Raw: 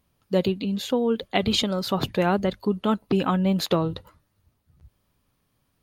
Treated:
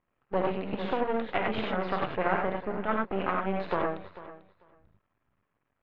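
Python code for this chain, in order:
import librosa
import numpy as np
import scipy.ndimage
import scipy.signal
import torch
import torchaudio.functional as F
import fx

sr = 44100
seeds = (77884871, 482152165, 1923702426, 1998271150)

p1 = fx.highpass(x, sr, hz=230.0, slope=12, at=(2.94, 3.94))
p2 = fx.rev_gated(p1, sr, seeds[0], gate_ms=120, shape='rising', drr_db=-1.0)
p3 = np.maximum(p2, 0.0)
p4 = scipy.signal.sosfilt(scipy.signal.butter(4, 2200.0, 'lowpass', fs=sr, output='sos'), p3)
p5 = fx.low_shelf(p4, sr, hz=340.0, db=-11.0)
p6 = p5 + fx.echo_feedback(p5, sr, ms=444, feedback_pct=16, wet_db=-16.5, dry=0)
y = fx.band_squash(p6, sr, depth_pct=70, at=(0.73, 2.08))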